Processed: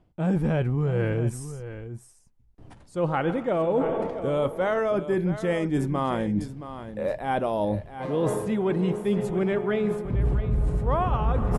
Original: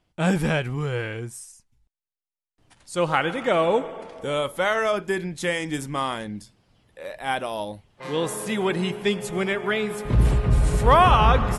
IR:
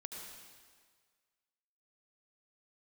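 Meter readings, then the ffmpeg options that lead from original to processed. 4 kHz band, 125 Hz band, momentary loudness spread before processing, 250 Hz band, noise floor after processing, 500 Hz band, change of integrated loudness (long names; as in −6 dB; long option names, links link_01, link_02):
−13.5 dB, −1.0 dB, 16 LU, +1.5 dB, −57 dBFS, −0.5 dB, −3.0 dB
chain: -af "tiltshelf=frequency=1300:gain=9.5,areverse,acompressor=threshold=-29dB:ratio=6,areverse,aecho=1:1:672:0.251,volume=6dB"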